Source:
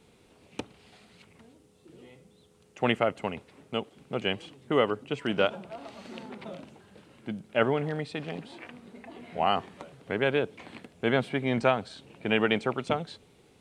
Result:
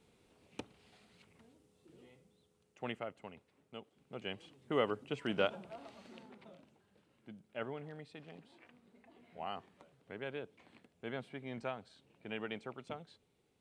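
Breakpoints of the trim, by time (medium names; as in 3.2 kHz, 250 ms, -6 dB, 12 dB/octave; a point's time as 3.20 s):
2.01 s -9 dB
3.17 s -18 dB
3.80 s -18 dB
4.89 s -7.5 dB
5.72 s -7.5 dB
6.58 s -17 dB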